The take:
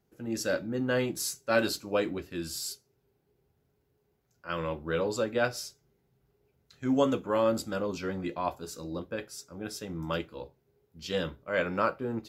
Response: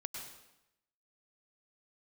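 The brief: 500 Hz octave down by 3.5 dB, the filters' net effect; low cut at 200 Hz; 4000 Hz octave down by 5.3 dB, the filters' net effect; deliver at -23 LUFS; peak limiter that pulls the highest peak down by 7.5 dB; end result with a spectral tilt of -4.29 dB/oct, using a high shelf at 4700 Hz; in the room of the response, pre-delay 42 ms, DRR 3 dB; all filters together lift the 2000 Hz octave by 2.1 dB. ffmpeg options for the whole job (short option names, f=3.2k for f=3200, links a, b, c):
-filter_complex "[0:a]highpass=200,equalizer=f=500:t=o:g=-4,equalizer=f=2k:t=o:g=5.5,equalizer=f=4k:t=o:g=-6,highshelf=f=4.7k:g=-5,alimiter=limit=-20.5dB:level=0:latency=1,asplit=2[a][b];[1:a]atrim=start_sample=2205,adelay=42[c];[b][c]afir=irnorm=-1:irlink=0,volume=-2dB[d];[a][d]amix=inputs=2:normalize=0,volume=10.5dB"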